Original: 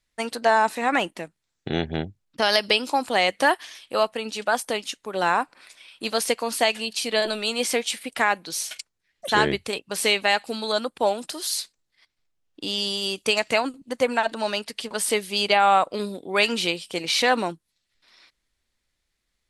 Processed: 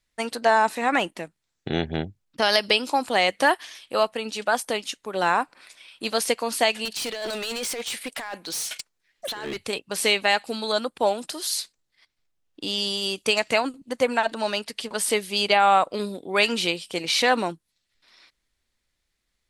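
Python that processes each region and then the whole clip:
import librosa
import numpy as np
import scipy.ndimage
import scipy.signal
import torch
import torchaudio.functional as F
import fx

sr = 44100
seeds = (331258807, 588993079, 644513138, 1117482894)

y = fx.chain(x, sr, fx.peak_eq(hz=67.0, db=-10.0, octaves=2.9),
    fx.over_compress(threshold_db=-28.0, ratio=-1.0),
    fx.overload_stage(gain_db=26.5), at=(6.85, 9.66))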